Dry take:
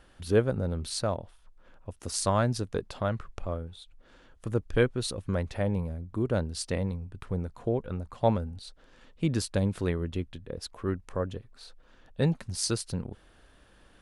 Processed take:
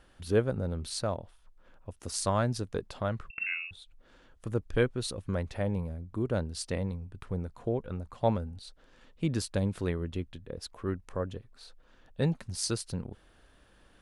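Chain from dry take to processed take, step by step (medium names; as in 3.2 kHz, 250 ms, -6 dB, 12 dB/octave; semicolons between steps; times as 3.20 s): 3.30–3.71 s: frequency inversion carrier 2.7 kHz; trim -2.5 dB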